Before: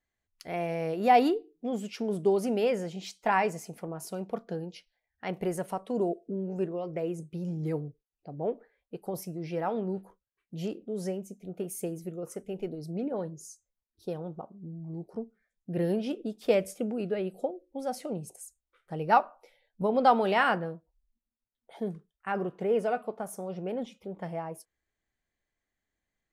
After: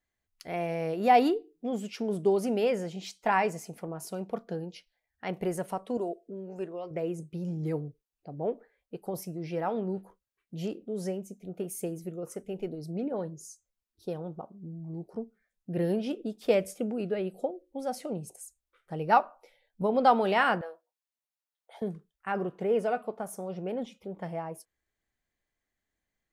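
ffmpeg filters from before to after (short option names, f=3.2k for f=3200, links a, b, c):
-filter_complex "[0:a]asettb=1/sr,asplit=3[a][b][c];[a]atrim=end=5.974[d];[b]atrim=start=5.97:end=6.91,asetpts=PTS-STARTPTS,afade=t=in:d=0.004:c=qsin,afade=t=out:st=0.936:d=0.004:c=qsin,equalizer=f=90:w=0.3:g=-11.5[e];[c]atrim=start=6.906[f];[d][e]acrossfade=d=0.004:c1=hsin:c2=qsin[g];[g][f]acrossfade=d=0.004:c1=qsin:c2=hsin,asettb=1/sr,asplit=3[h][i][j];[h]atrim=end=20.614[k];[i]atrim=start=20.61:end=21.82,asetpts=PTS-STARTPTS,afade=t=in:d=0.004:c=qsin,afade=t=out:st=1.206:d=0.004:c=qsin,highpass=f=520:w=0.5412,highpass=f=520:w=1.3066[l];[j]atrim=start=21.816[m];[k][l]acrossfade=d=0.004:c1=hsin:c2=qsin[n];[n][m]acrossfade=d=0.004:c1=qsin:c2=hsin"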